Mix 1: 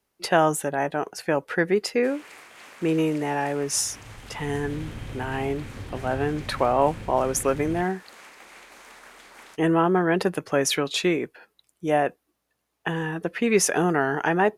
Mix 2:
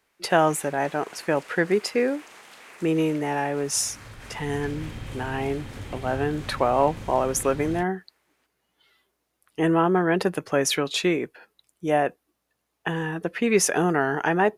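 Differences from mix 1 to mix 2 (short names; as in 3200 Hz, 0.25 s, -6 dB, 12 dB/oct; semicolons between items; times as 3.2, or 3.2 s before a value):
first sound: entry -1.75 s; second sound: remove running mean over 6 samples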